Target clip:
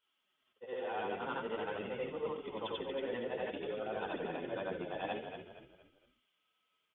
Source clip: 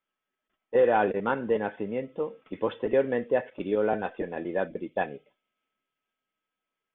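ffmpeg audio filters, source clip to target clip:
-filter_complex "[0:a]afftfilt=real='re':imag='-im':win_size=8192:overlap=0.75,flanger=delay=1.5:depth=9.7:regen=24:speed=0.5:shape=sinusoidal,equalizer=f=1.1k:t=o:w=1.3:g=5,areverse,acompressor=threshold=-43dB:ratio=16,areverse,highpass=53,equalizer=f=3.2k:t=o:w=0.7:g=14,bandreject=f=1.7k:w=19,asplit=5[a][b][c][d][e];[b]adelay=232,afreqshift=-43,volume=-8dB[f];[c]adelay=464,afreqshift=-86,volume=-16.4dB[g];[d]adelay=696,afreqshift=-129,volume=-24.8dB[h];[e]adelay=928,afreqshift=-172,volume=-33.2dB[i];[a][f][g][h][i]amix=inputs=5:normalize=0,volume=7dB"

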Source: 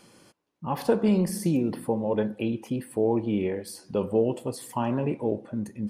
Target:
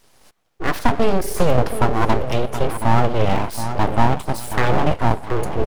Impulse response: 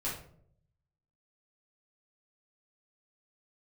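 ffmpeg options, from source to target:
-filter_complex "[0:a]acrossover=split=200|550|2700[a][b][c][d];[d]asoftclip=type=hard:threshold=-38.5dB[e];[a][b][c][e]amix=inputs=4:normalize=0,dynaudnorm=f=210:g=3:m=14.5dB,asetrate=45938,aresample=44100,asplit=2[f][g];[g]adelay=724,lowpass=f=1.7k:p=1,volume=-9.5dB,asplit=2[h][i];[i]adelay=724,lowpass=f=1.7k:p=1,volume=0.38,asplit=2[j][k];[k]adelay=724,lowpass=f=1.7k:p=1,volume=0.38,asplit=2[l][m];[m]adelay=724,lowpass=f=1.7k:p=1,volume=0.38[n];[f][h][j][l][n]amix=inputs=5:normalize=0,aeval=exprs='abs(val(0))':c=same"

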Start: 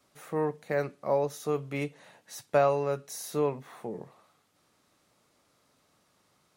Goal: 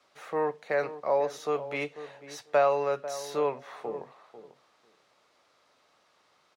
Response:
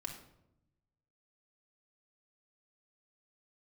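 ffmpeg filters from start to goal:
-filter_complex "[0:a]acrossover=split=410 5800:gain=0.178 1 0.158[a][b][c];[a][b][c]amix=inputs=3:normalize=0,asplit=2[d][e];[e]alimiter=level_in=1dB:limit=-24dB:level=0:latency=1,volume=-1dB,volume=-3dB[f];[d][f]amix=inputs=2:normalize=0,asplit=2[g][h];[h]adelay=494,lowpass=f=890:p=1,volume=-12dB,asplit=2[i][j];[j]adelay=494,lowpass=f=890:p=1,volume=0.16[k];[g][i][k]amix=inputs=3:normalize=0"

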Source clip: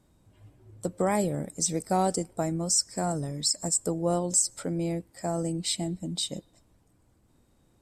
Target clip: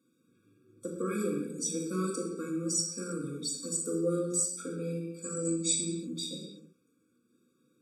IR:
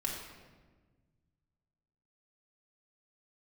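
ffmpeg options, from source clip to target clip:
-filter_complex "[0:a]flanger=delay=3.8:depth=7:regen=78:speed=0.29:shape=sinusoidal,asettb=1/sr,asplit=3[a][b][c];[a]atrim=end=5.224[d];[b]atrim=start=5.22:end=5.79,asetpts=PTS-STARTPTS,afade=t=in:d=0.004:c=qsin,afade=t=out:st=0.566:d=0.004:c=qsin,lowpass=f=7.5k:t=q:w=5.2[e];[c]atrim=start=5.786[f];[d][e]acrossfade=d=0.004:c1=hsin:c2=qsin[g];[g][f]acrossfade=d=0.004:c1=qsin:c2=hsin,acrossover=split=170[h][i];[h]acrusher=bits=3:mix=0:aa=0.5[j];[j][i]amix=inputs=2:normalize=0[k];[1:a]atrim=start_sample=2205,afade=t=out:st=0.38:d=0.01,atrim=end_sample=17199[l];[k][l]afir=irnorm=-1:irlink=0,afftfilt=real='re*eq(mod(floor(b*sr/1024/550),2),0)':imag='im*eq(mod(floor(b*sr/1024/550),2),0)':win_size=1024:overlap=0.75"

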